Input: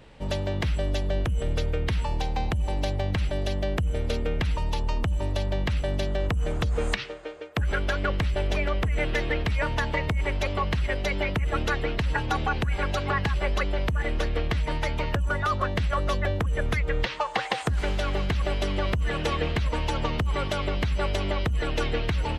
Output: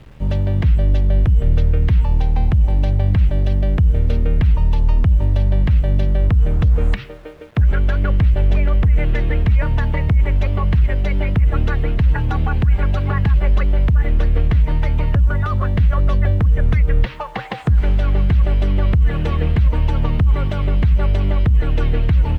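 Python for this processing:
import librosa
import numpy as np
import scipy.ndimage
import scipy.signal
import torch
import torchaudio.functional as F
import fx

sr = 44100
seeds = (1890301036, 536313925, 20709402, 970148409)

y = fx.quant_dither(x, sr, seeds[0], bits=8, dither='none')
y = fx.bass_treble(y, sr, bass_db=13, treble_db=-12)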